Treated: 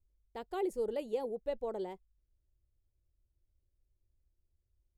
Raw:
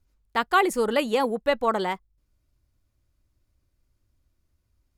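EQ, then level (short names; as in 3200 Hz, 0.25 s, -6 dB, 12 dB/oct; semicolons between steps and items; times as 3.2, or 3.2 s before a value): passive tone stack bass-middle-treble 10-0-1; band shelf 580 Hz +15 dB; 0.0 dB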